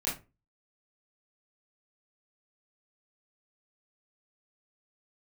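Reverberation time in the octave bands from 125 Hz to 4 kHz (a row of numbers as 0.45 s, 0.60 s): 0.40 s, 0.35 s, 0.30 s, 0.25 s, 0.25 s, 0.20 s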